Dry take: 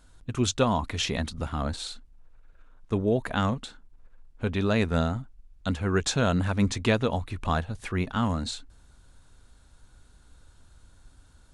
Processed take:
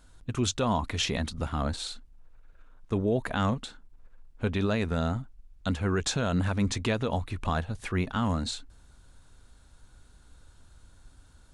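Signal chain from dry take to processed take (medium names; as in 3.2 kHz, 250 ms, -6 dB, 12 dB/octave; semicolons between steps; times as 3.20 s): peak limiter -17.5 dBFS, peak gain reduction 7 dB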